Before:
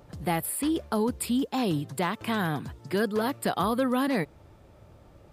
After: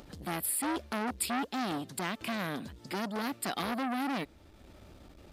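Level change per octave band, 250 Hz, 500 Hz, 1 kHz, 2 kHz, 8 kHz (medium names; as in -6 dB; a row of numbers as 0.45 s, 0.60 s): -7.5 dB, -10.5 dB, -4.5 dB, -3.5 dB, 0.0 dB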